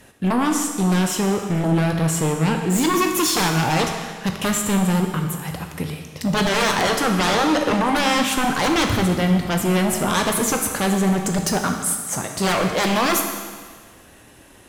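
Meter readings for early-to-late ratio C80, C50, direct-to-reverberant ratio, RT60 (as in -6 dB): 6.5 dB, 5.0 dB, 3.0 dB, 1.6 s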